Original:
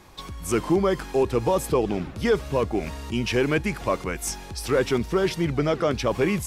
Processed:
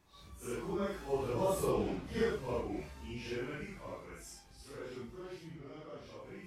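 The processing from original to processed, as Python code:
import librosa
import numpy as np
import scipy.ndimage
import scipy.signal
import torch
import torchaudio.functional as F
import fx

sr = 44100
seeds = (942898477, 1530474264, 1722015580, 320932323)

y = fx.phase_scramble(x, sr, seeds[0], window_ms=200)
y = fx.doppler_pass(y, sr, speed_mps=14, closest_m=8.9, pass_at_s=1.79)
y = y * 10.0 ** (-9.0 / 20.0)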